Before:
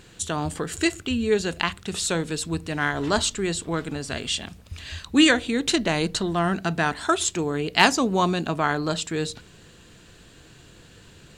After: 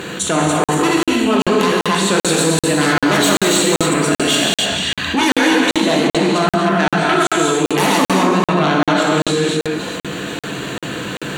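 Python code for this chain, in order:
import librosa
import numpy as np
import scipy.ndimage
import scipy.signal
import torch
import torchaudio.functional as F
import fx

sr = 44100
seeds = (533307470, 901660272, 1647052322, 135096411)

y = fx.reverse_delay(x, sr, ms=179, wet_db=-2.5)
y = fx.peak_eq(y, sr, hz=7600.0, db=-9.0, octaves=2.3)
y = fx.rider(y, sr, range_db=4, speed_s=2.0)
y = fx.high_shelf(y, sr, hz=4900.0, db=9.5, at=(2.25, 4.45))
y = fx.fold_sine(y, sr, drive_db=16, ceiling_db=-1.0)
y = scipy.signal.sosfilt(scipy.signal.butter(2, 210.0, 'highpass', fs=sr, output='sos'), y)
y = fx.notch(y, sr, hz=5100.0, q=5.5)
y = fx.rev_gated(y, sr, seeds[0], gate_ms=320, shape='flat', drr_db=-2.0)
y = fx.buffer_crackle(y, sr, first_s=0.64, period_s=0.39, block=2048, kind='zero')
y = fx.env_flatten(y, sr, amount_pct=50)
y = y * librosa.db_to_amplitude(-13.5)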